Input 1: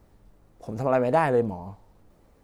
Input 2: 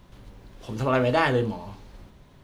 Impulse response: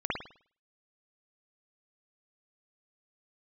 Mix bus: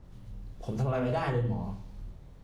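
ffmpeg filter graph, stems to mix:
-filter_complex "[0:a]lowpass=6500,acompressor=threshold=-28dB:ratio=6,volume=-2dB[link_01];[1:a]bass=frequency=250:gain=14,treble=frequency=4000:gain=7,flanger=delay=22.5:depth=7.6:speed=1.3,adynamicequalizer=threshold=0.01:dfrequency=2100:dqfactor=0.7:tfrequency=2100:tqfactor=0.7:attack=5:release=100:ratio=0.375:range=3:mode=cutabove:tftype=highshelf,volume=-12.5dB,asplit=2[link_02][link_03];[link_03]volume=-8dB[link_04];[2:a]atrim=start_sample=2205[link_05];[link_04][link_05]afir=irnorm=-1:irlink=0[link_06];[link_01][link_02][link_06]amix=inputs=3:normalize=0,alimiter=limit=-20dB:level=0:latency=1:release=275"

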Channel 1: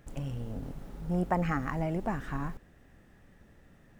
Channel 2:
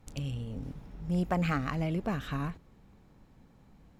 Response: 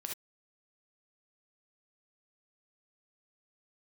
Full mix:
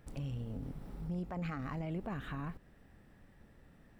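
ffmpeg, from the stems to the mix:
-filter_complex "[0:a]acompressor=threshold=-38dB:ratio=6,bandreject=frequency=6600:width=6.2,volume=-4dB[link_01];[1:a]highshelf=frequency=5500:gain=-7.5,volume=-8.5dB[link_02];[link_01][link_02]amix=inputs=2:normalize=0,alimiter=level_in=8dB:limit=-24dB:level=0:latency=1:release=11,volume=-8dB"

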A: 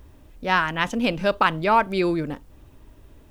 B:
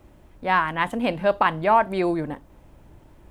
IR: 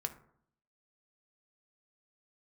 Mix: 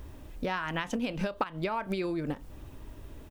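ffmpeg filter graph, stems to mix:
-filter_complex "[0:a]volume=3dB[link_01];[1:a]flanger=delay=8.8:depth=2.6:regen=49:speed=1.4:shape=sinusoidal,acompressor=threshold=-37dB:ratio=2,adelay=27,volume=-12dB,asplit=2[link_02][link_03];[link_03]apad=whole_len=145612[link_04];[link_01][link_04]sidechaincompress=threshold=-54dB:ratio=8:attack=6.5:release=101[link_05];[link_05][link_02]amix=inputs=2:normalize=0,acompressor=threshold=-27dB:ratio=10"

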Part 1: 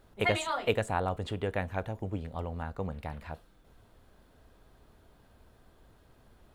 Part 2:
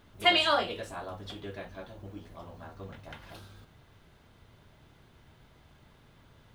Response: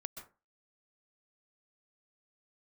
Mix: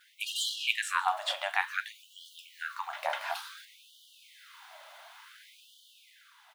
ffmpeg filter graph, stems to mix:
-filter_complex "[0:a]volume=2dB,asplit=2[link_01][link_02];[1:a]asoftclip=type=tanh:threshold=-31dB,adelay=5.4,volume=2dB,asplit=2[link_03][link_04];[link_04]volume=-4dB[link_05];[link_02]apad=whole_len=288891[link_06];[link_03][link_06]sidechaincompress=threshold=-34dB:ratio=8:attack=16:release=127[link_07];[2:a]atrim=start_sample=2205[link_08];[link_05][link_08]afir=irnorm=-1:irlink=0[link_09];[link_01][link_07][link_09]amix=inputs=3:normalize=0,dynaudnorm=framelen=120:gausssize=11:maxgain=7.5dB,afftfilt=real='re*gte(b*sr/1024,530*pow(2900/530,0.5+0.5*sin(2*PI*0.56*pts/sr)))':imag='im*gte(b*sr/1024,530*pow(2900/530,0.5+0.5*sin(2*PI*0.56*pts/sr)))':win_size=1024:overlap=0.75"

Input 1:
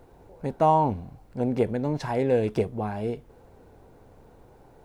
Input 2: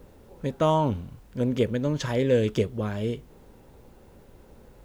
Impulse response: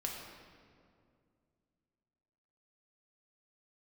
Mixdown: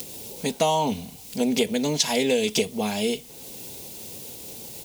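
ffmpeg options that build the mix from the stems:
-filter_complex "[0:a]volume=2dB[link_01];[1:a]acompressor=mode=upward:threshold=-32dB:ratio=2.5,equalizer=frequency=1500:width=0.85:gain=-11.5,adelay=3.8,volume=-1dB[link_02];[link_01][link_02]amix=inputs=2:normalize=0,highpass=120,aexciter=amount=5.5:drive=8.1:freq=2200,acompressor=threshold=-18dB:ratio=6"

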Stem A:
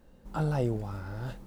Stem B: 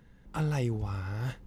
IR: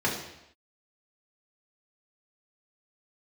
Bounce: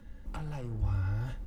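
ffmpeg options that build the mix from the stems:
-filter_complex "[0:a]highpass=frequency=77:width=0.5412,highpass=frequency=77:width=1.3066,lowshelf=frequency=490:gain=-9,aeval=exprs='0.0891*(cos(1*acos(clip(val(0)/0.0891,-1,1)))-cos(1*PI/2))+0.0178*(cos(8*acos(clip(val(0)/0.0891,-1,1)))-cos(8*PI/2))':channel_layout=same,volume=-6dB,asplit=3[link_01][link_02][link_03];[link_02]volume=-17.5dB[link_04];[1:a]lowshelf=frequency=150:gain=9.5,aecho=1:1:3.5:0.69,volume=-1,adelay=0.5,volume=0.5dB[link_05];[link_03]apad=whole_len=64985[link_06];[link_05][link_06]sidechaincompress=threshold=-41dB:ratio=8:attack=16:release=390[link_07];[2:a]atrim=start_sample=2205[link_08];[link_04][link_08]afir=irnorm=-1:irlink=0[link_09];[link_01][link_07][link_09]amix=inputs=3:normalize=0,acrossover=split=140[link_10][link_11];[link_11]acompressor=threshold=-43dB:ratio=6[link_12];[link_10][link_12]amix=inputs=2:normalize=0"

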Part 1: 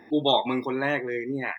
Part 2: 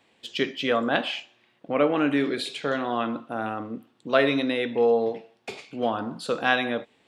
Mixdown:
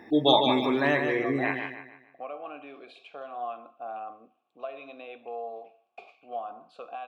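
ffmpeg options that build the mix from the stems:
ffmpeg -i stem1.wav -i stem2.wav -filter_complex "[0:a]volume=1dB,asplit=2[link_01][link_02];[link_02]volume=-6dB[link_03];[1:a]alimiter=limit=-16.5dB:level=0:latency=1:release=335,asplit=3[link_04][link_05][link_06];[link_04]bandpass=frequency=730:width_type=q:width=8,volume=0dB[link_07];[link_05]bandpass=frequency=1090:width_type=q:width=8,volume=-6dB[link_08];[link_06]bandpass=frequency=2440:width_type=q:width=8,volume=-9dB[link_09];[link_07][link_08][link_09]amix=inputs=3:normalize=0,adelay=500,volume=-0.5dB[link_10];[link_03]aecho=0:1:149|298|447|596|745:1|0.38|0.144|0.0549|0.0209[link_11];[link_01][link_10][link_11]amix=inputs=3:normalize=0" out.wav

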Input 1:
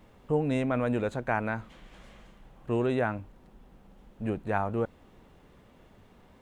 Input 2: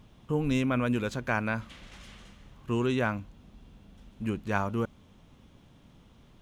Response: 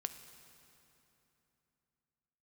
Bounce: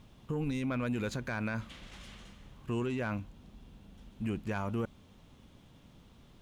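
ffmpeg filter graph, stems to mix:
-filter_complex "[0:a]highshelf=frequency=2400:width_type=q:width=1.5:gain=14,volume=-16.5dB[link_01];[1:a]asoftclip=type=tanh:threshold=-18.5dB,volume=-1.5dB[link_02];[link_01][link_02]amix=inputs=2:normalize=0,alimiter=level_in=2.5dB:limit=-24dB:level=0:latency=1:release=27,volume=-2.5dB"

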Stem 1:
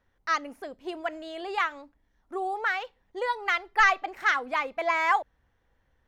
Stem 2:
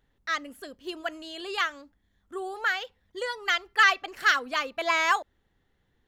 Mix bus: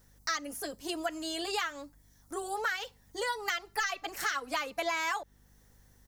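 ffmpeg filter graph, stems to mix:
ffmpeg -i stem1.wav -i stem2.wav -filter_complex "[0:a]acompressor=threshold=-45dB:ratio=1.5,aexciter=amount=9.5:drive=6.8:freq=4500,aeval=exprs='val(0)+0.000708*(sin(2*PI*50*n/s)+sin(2*PI*2*50*n/s)/2+sin(2*PI*3*50*n/s)/3+sin(2*PI*4*50*n/s)/4+sin(2*PI*5*50*n/s)/5)':channel_layout=same,volume=1dB[link_01];[1:a]alimiter=limit=-16.5dB:level=0:latency=1:release=36,volume=-1,adelay=7.6,volume=0.5dB[link_02];[link_01][link_02]amix=inputs=2:normalize=0,acompressor=threshold=-29dB:ratio=6" out.wav

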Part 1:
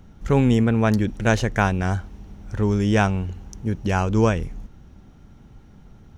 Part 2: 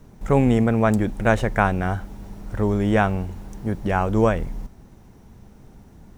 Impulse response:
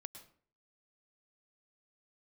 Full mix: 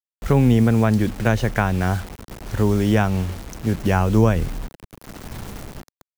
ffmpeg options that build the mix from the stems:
-filter_complex "[0:a]volume=1dB[link_01];[1:a]bandreject=frequency=50:width_type=h:width=6,bandreject=frequency=100:width_type=h:width=6,bandreject=frequency=150:width_type=h:width=6,bandreject=frequency=200:width_type=h:width=6,dynaudnorm=framelen=140:gausssize=11:maxgain=15.5dB,volume=-6dB,asplit=2[link_02][link_03];[link_03]apad=whole_len=276753[link_04];[link_01][link_04]sidechaingate=range=-33dB:threshold=-41dB:ratio=16:detection=peak[link_05];[link_05][link_02]amix=inputs=2:normalize=0,dynaudnorm=framelen=230:gausssize=5:maxgain=5dB,acrusher=bits=5:mix=0:aa=0.000001,acrossover=split=200[link_06][link_07];[link_07]acompressor=threshold=-18dB:ratio=3[link_08];[link_06][link_08]amix=inputs=2:normalize=0"

